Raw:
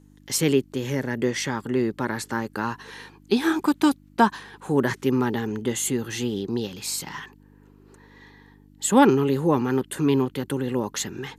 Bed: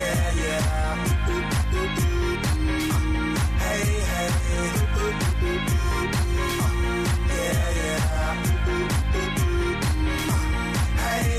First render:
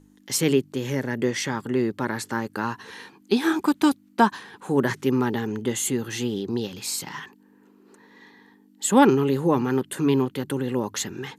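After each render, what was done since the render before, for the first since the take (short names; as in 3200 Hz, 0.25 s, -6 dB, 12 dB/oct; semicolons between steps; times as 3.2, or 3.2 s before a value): de-hum 50 Hz, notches 3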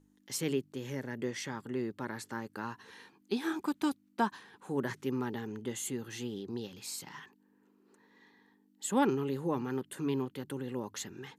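gain -12 dB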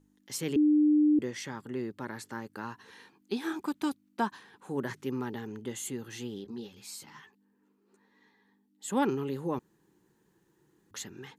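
0.56–1.19 bleep 300 Hz -19.5 dBFS; 6.44–8.88 ensemble effect; 9.59–10.91 room tone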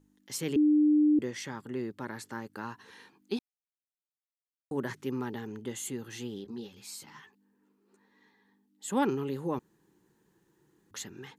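3.39–4.71 mute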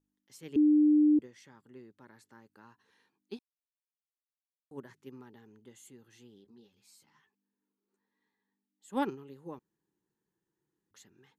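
upward expander 2.5:1, over -34 dBFS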